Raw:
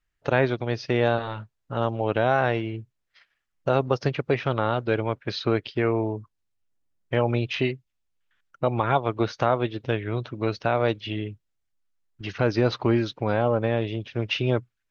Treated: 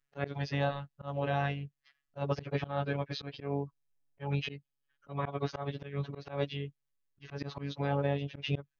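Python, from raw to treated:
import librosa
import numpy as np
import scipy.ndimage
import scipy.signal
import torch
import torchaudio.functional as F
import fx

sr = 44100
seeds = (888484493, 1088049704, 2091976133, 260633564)

y = fx.robotise(x, sr, hz=141.0)
y = fx.stretch_vocoder_free(y, sr, factor=0.59)
y = fx.auto_swell(y, sr, attack_ms=155.0)
y = y * 10.0 ** (-2.0 / 20.0)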